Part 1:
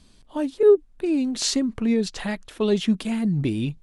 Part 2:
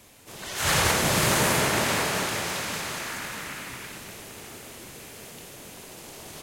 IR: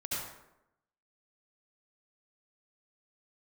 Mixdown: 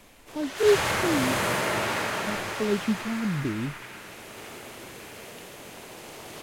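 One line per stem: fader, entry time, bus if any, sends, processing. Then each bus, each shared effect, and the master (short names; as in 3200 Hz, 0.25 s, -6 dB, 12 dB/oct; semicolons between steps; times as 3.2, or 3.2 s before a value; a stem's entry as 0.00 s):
-9.0 dB, 0.00 s, muted 1.4–2.27, no send, low-pass opened by the level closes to 600 Hz, open at -18 dBFS; low shelf 430 Hz +9.5 dB; noise-modulated delay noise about 4000 Hz, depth 0.033 ms
+1.0 dB, 0.00 s, send -9.5 dB, auto duck -9 dB, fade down 0.65 s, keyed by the first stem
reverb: on, RT60 0.85 s, pre-delay 63 ms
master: tone controls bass -6 dB, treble -7 dB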